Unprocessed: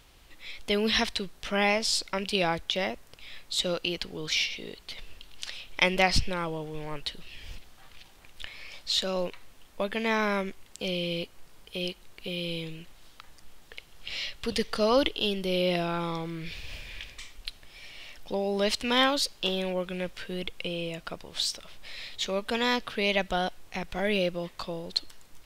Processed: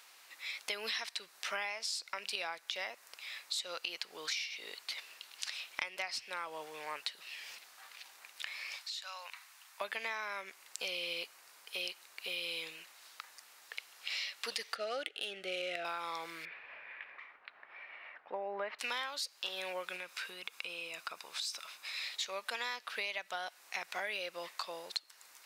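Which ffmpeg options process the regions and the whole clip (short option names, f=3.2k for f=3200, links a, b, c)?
-filter_complex "[0:a]asettb=1/sr,asplit=3[a][b][c];[a]atrim=end=8.764[d];[b]atrim=start=8.76:end=9.81,asetpts=PTS-STARTPTS,afade=t=in:d=0.004:c=qsin,afade=t=out:st=1.046:d=0.004:c=qsin,highpass=f=800:w=0.5412,highpass=f=800:w=1.3066,acompressor=threshold=-42dB:ratio=5:attack=3.2:release=140:knee=1:detection=peak[e];[c]atrim=start=9.806[f];[d][e]acrossfade=d=0.004:c1=hsin:c2=qsin[g];[g][f]acrossfade=d=0.004:c1=qsin:c2=hsin,asettb=1/sr,asplit=3[h][i][j];[h]atrim=end=14.754[k];[i]atrim=start=14.75:end=15.85,asetpts=PTS-STARTPTS,afade=t=in:d=0.004:c=qsin,afade=t=out:st=1.096:d=0.004:c=qsin,equalizer=f=5.1k:w=2:g=-10.5,adynamicsmooth=sensitivity=3.5:basefreq=3.8k,asuperstop=centerf=1000:order=8:qfactor=2.4[l];[j]atrim=start=15.846[m];[k][l]acrossfade=d=0.004:c1=hsin:c2=qsin[n];[n][m]acrossfade=d=0.004:c1=qsin:c2=hsin,asettb=1/sr,asplit=3[o][p][q];[o]atrim=end=16.454[r];[p]atrim=start=16.45:end=18.79,asetpts=PTS-STARTPTS,afade=t=in:d=0.004:c=qsin,afade=t=out:st=2.336:d=0.004:c=qsin,lowpass=f=1.9k:w=0.5412,lowpass=f=1.9k:w=1.3066,acompressor=mode=upward:threshold=-40dB:ratio=2.5:attack=3.2:release=140:knee=2.83:detection=peak[s];[q]atrim=start=18.786[t];[r][s]acrossfade=d=0.004:c1=hsin:c2=qsin[u];[u][t]acrossfade=d=0.004:c1=qsin:c2=hsin,asettb=1/sr,asplit=3[v][w][x];[v]atrim=end=19.964[y];[w]atrim=start=19.96:end=22.04,asetpts=PTS-STARTPTS,afade=t=in:d=0.004:c=qsin,afade=t=out:st=2.076:d=0.004:c=qsin,aecho=1:1:0.8:0.31,atrim=end_sample=91728,acompressor=threshold=-34dB:ratio=5:attack=3.2:release=140:knee=1:detection=peak[z];[x]atrim=start=22.036[aa];[y][z]acrossfade=d=0.004:c1=hsin:c2=qsin[ab];[ab][aa]acrossfade=d=0.004:c1=qsin:c2=hsin,highpass=1k,equalizer=f=3.2k:w=3.7:g=-6.5,acompressor=threshold=-38dB:ratio=16,volume=3.5dB"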